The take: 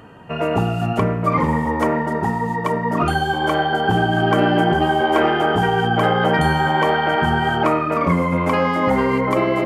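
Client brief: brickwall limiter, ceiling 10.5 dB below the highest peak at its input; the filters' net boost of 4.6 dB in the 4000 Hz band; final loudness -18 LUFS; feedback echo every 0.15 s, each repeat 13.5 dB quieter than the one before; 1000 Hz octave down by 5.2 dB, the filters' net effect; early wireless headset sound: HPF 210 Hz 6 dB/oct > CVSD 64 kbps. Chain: bell 1000 Hz -7 dB; bell 4000 Hz +7.5 dB; limiter -15 dBFS; HPF 210 Hz 6 dB/oct; feedback echo 0.15 s, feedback 21%, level -13.5 dB; CVSD 64 kbps; gain +7 dB

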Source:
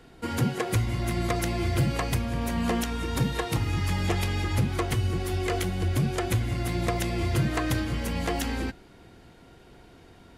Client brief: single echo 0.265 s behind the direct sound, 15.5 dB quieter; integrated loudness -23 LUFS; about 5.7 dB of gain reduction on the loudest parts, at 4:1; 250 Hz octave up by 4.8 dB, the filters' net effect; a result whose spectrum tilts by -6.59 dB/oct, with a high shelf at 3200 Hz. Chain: bell 250 Hz +6.5 dB; high shelf 3200 Hz -5.5 dB; compressor 4:1, threshold -25 dBFS; echo 0.265 s -15.5 dB; gain +6.5 dB

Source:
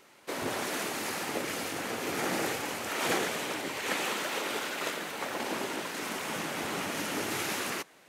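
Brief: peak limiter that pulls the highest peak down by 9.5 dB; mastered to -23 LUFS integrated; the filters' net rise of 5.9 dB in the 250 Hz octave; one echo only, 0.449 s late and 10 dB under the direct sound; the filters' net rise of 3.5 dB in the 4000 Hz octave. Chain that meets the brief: bell 250 Hz +7.5 dB; bell 4000 Hz +4.5 dB; limiter -23.5 dBFS; echo 0.449 s -10 dB; gain +9 dB

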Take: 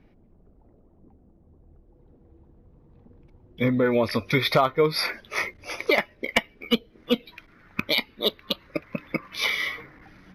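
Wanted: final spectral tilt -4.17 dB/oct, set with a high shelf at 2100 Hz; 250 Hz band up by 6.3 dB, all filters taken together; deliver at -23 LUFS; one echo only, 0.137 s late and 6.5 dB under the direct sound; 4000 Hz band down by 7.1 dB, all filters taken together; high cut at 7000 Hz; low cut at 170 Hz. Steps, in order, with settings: HPF 170 Hz; LPF 7000 Hz; bell 250 Hz +8 dB; high shelf 2100 Hz -4.5 dB; bell 4000 Hz -4.5 dB; echo 0.137 s -6.5 dB; gain +1 dB

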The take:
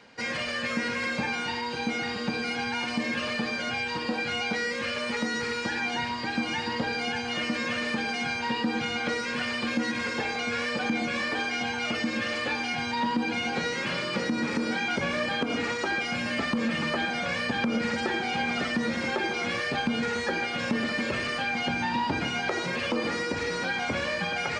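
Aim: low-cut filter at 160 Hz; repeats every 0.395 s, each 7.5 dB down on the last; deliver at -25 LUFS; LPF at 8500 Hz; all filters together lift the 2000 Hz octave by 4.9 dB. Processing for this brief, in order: HPF 160 Hz; LPF 8500 Hz; bell 2000 Hz +6 dB; feedback echo 0.395 s, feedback 42%, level -7.5 dB; gain -0.5 dB

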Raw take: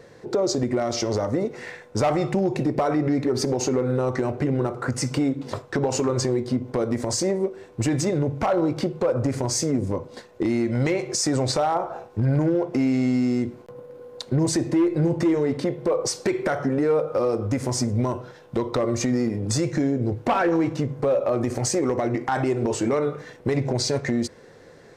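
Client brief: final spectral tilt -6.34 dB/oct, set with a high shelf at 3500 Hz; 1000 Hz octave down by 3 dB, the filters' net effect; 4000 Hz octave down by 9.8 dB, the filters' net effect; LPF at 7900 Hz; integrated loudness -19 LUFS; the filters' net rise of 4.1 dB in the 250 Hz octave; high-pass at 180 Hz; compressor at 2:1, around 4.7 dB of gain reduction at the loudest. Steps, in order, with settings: HPF 180 Hz; LPF 7900 Hz; bell 250 Hz +6.5 dB; bell 1000 Hz -4 dB; high shelf 3500 Hz -6.5 dB; bell 4000 Hz -7 dB; compressor 2:1, threshold -23 dBFS; gain +7 dB

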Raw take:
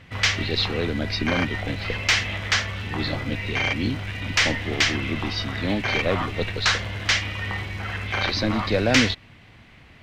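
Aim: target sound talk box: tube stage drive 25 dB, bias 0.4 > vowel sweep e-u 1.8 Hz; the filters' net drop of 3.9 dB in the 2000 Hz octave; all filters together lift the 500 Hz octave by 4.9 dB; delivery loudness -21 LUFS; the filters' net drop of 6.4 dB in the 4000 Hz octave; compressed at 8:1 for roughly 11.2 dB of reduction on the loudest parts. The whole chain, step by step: bell 500 Hz +6 dB; bell 2000 Hz -3 dB; bell 4000 Hz -7.5 dB; compressor 8:1, threshold -25 dBFS; tube stage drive 25 dB, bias 0.4; vowel sweep e-u 1.8 Hz; gain +23.5 dB

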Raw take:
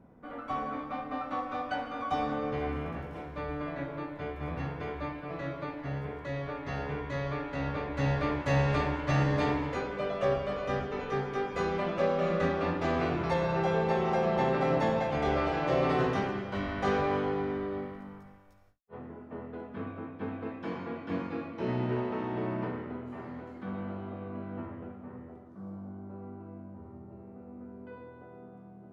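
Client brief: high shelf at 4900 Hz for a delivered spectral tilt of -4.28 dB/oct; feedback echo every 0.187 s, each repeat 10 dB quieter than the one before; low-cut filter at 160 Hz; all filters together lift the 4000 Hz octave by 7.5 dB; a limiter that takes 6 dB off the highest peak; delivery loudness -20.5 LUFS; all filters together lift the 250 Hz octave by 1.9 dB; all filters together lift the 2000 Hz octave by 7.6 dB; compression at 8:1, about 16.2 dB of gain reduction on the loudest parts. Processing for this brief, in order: HPF 160 Hz; bell 250 Hz +3.5 dB; bell 2000 Hz +7.5 dB; bell 4000 Hz +4 dB; high shelf 4900 Hz +6.5 dB; compressor 8:1, threshold -39 dBFS; limiter -34.5 dBFS; feedback echo 0.187 s, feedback 32%, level -10 dB; gain +23 dB

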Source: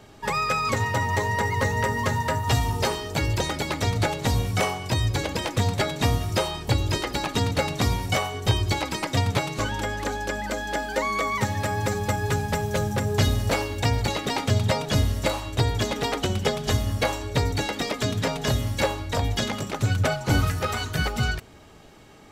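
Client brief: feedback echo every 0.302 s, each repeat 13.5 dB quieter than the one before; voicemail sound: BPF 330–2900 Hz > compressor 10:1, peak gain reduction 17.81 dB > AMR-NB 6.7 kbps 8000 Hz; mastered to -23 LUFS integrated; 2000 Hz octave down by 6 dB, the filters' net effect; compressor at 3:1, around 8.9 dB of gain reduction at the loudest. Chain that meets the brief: bell 2000 Hz -6.5 dB; compressor 3:1, threshold -29 dBFS; BPF 330–2900 Hz; feedback echo 0.302 s, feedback 21%, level -13.5 dB; compressor 10:1, threshold -45 dBFS; gain +28 dB; AMR-NB 6.7 kbps 8000 Hz

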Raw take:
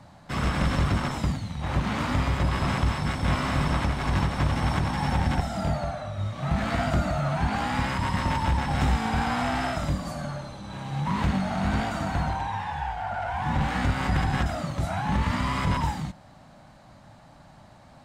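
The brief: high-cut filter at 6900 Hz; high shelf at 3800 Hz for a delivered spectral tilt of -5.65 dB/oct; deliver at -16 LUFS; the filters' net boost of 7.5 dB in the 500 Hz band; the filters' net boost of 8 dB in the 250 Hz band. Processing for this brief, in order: LPF 6900 Hz; bell 250 Hz +8.5 dB; bell 500 Hz +8.5 dB; high shelf 3800 Hz -5.5 dB; gain +7 dB

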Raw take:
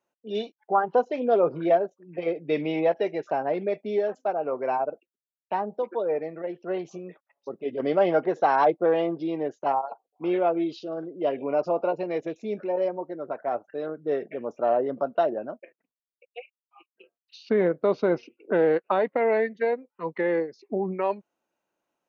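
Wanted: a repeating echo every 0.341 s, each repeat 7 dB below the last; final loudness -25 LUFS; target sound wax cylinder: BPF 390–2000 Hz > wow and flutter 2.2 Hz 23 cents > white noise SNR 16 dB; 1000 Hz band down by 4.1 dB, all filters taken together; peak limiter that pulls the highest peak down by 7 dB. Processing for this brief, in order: bell 1000 Hz -5.5 dB; limiter -19 dBFS; BPF 390–2000 Hz; feedback echo 0.341 s, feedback 45%, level -7 dB; wow and flutter 2.2 Hz 23 cents; white noise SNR 16 dB; gain +6 dB

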